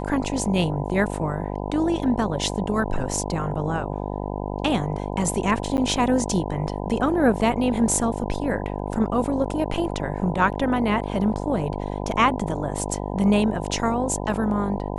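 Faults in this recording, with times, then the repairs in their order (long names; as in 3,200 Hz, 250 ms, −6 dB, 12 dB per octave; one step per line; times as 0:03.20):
mains buzz 50 Hz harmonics 20 −29 dBFS
0:05.77–0:05.78: drop-out 9.9 ms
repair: hum removal 50 Hz, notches 20
repair the gap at 0:05.77, 9.9 ms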